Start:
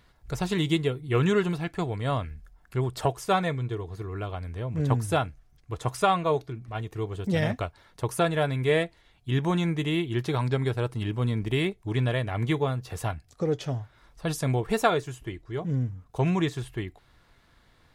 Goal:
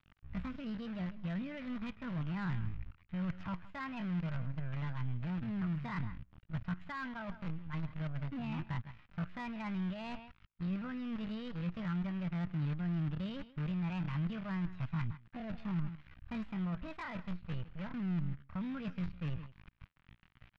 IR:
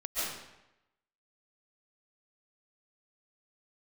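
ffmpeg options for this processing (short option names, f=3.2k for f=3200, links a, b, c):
-af "acrusher=bits=6:dc=4:mix=0:aa=0.000001,alimiter=limit=-19dB:level=0:latency=1:release=239,aecho=1:1:136:0.075,areverse,acompressor=threshold=-37dB:ratio=8,areverse,lowpass=f=2k:w=0.5412,lowpass=f=2k:w=1.3066,asetrate=72056,aresample=44100,atempo=0.612027,asoftclip=type=tanh:threshold=-35dB,asetrate=38455,aresample=44100,firequalizer=gain_entry='entry(130,0);entry(430,-19);entry(1200,-8)':delay=0.05:min_phase=1,volume=10dB"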